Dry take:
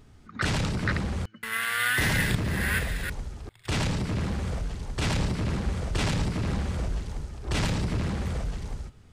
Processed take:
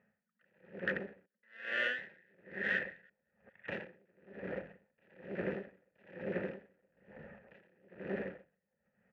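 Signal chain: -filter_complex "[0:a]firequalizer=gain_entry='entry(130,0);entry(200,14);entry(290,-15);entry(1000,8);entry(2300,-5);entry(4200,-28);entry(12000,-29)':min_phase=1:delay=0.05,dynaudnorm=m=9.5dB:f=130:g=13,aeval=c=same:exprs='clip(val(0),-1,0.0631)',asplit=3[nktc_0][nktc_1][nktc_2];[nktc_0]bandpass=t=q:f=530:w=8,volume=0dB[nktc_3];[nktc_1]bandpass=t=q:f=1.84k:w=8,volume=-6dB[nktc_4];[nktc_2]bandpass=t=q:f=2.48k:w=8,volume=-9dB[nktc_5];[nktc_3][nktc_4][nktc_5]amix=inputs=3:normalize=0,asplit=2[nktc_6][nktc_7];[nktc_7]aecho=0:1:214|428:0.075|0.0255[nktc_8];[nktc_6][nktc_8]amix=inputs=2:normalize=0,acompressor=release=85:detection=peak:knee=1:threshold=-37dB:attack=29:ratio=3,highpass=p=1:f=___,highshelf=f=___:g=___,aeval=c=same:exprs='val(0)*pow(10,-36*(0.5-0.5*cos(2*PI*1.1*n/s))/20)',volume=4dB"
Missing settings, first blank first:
140, 11k, -6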